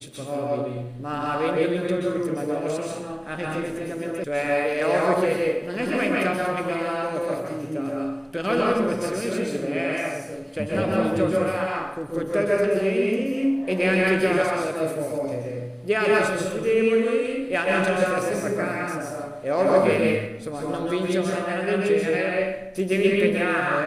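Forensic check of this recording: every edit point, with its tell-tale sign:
4.24 sound cut off

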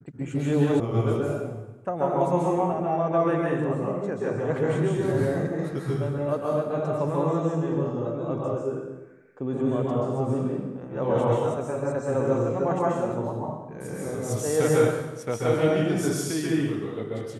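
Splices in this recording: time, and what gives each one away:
0.8 sound cut off

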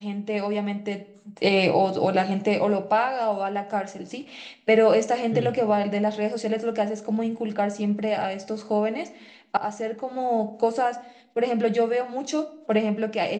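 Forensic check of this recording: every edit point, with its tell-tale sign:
9.57 sound cut off

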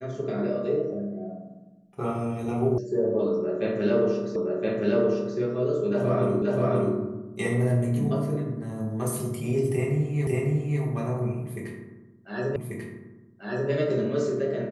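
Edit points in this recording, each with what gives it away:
2.78 sound cut off
4.36 repeat of the last 1.02 s
6.42 repeat of the last 0.53 s
10.27 repeat of the last 0.55 s
12.56 repeat of the last 1.14 s

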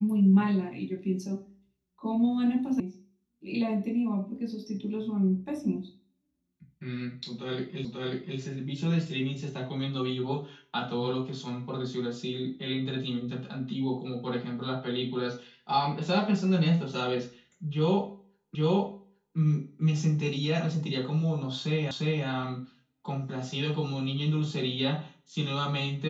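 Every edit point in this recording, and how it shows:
2.8 sound cut off
7.85 repeat of the last 0.54 s
18.55 repeat of the last 0.82 s
21.91 repeat of the last 0.35 s

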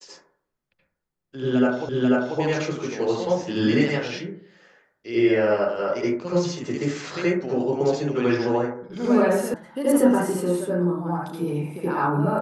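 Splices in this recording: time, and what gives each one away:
1.89 repeat of the last 0.49 s
9.54 sound cut off

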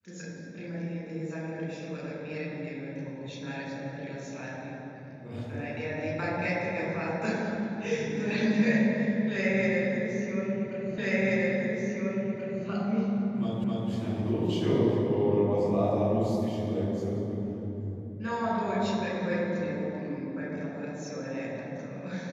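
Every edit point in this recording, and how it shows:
10.98 repeat of the last 1.68 s
13.64 repeat of the last 0.26 s

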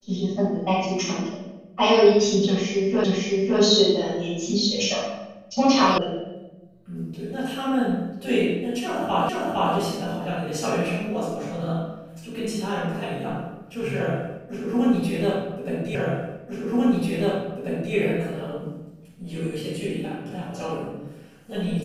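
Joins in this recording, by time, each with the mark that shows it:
3.04 repeat of the last 0.56 s
5.98 sound cut off
9.29 repeat of the last 0.46 s
15.95 repeat of the last 1.99 s

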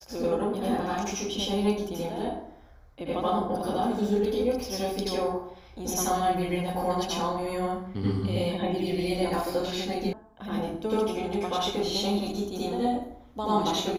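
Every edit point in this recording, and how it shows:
10.13 sound cut off

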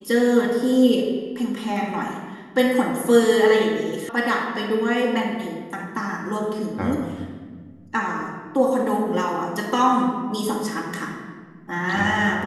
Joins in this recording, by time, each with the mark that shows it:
4.09 sound cut off

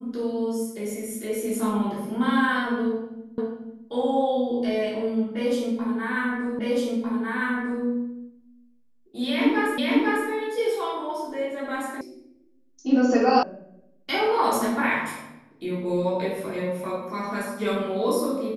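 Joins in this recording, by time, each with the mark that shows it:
3.38 repeat of the last 0.49 s
6.59 repeat of the last 1.25 s
9.78 repeat of the last 0.5 s
12.01 sound cut off
13.43 sound cut off

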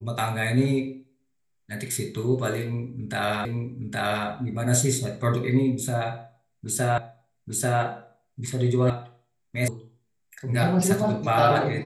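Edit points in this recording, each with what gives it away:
3.45 repeat of the last 0.82 s
6.98 repeat of the last 0.84 s
8.9 sound cut off
9.68 sound cut off

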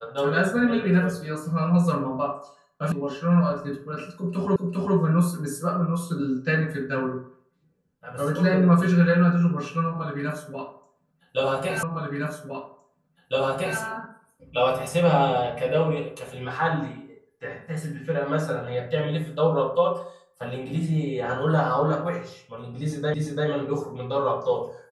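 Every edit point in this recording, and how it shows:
2.92 sound cut off
4.56 repeat of the last 0.4 s
11.83 repeat of the last 1.96 s
23.14 repeat of the last 0.34 s

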